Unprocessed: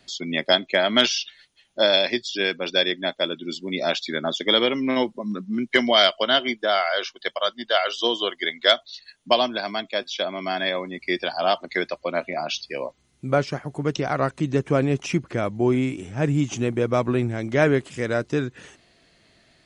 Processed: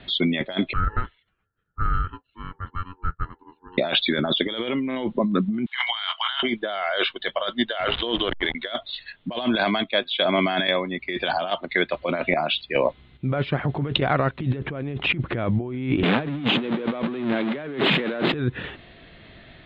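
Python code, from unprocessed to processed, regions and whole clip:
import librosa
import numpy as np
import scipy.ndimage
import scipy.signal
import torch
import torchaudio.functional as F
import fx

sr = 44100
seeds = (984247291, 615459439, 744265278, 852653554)

y = fx.chain(x, sr, fx.formant_cascade(vowel='a'),
    fx.ring_mod(carrier_hz=640.0), at=(0.73, 3.78))
y = fx.chain(y, sr, fx.cheby1_highpass(hz=820.0, order=6),
    fx.doubler(ms=24.0, db=-12.5),
    fx.band_squash(depth_pct=70), at=(5.66, 6.43))
y = fx.chain(y, sr, fx.lowpass(hz=5300.0, slope=24),
    fx.backlash(play_db=-26.0),
    fx.resample_bad(factor=3, down='none', up='filtered'), at=(7.8, 8.55))
y = fx.chain(y, sr, fx.high_shelf(hz=2400.0, db=4.5),
    fx.chopper(hz=1.2, depth_pct=60, duty_pct=50), at=(9.42, 14.56))
y = fx.chain(y, sr, fx.zero_step(step_db=-22.5),
    fx.steep_highpass(hz=160.0, slope=48),
    fx.high_shelf(hz=5200.0, db=4.0), at=(16.03, 18.34))
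y = scipy.signal.sosfilt(scipy.signal.ellip(4, 1.0, 40, 3700.0, 'lowpass', fs=sr, output='sos'), y)
y = fx.low_shelf(y, sr, hz=130.0, db=8.0)
y = fx.over_compress(y, sr, threshold_db=-30.0, ratio=-1.0)
y = y * librosa.db_to_amplitude(5.5)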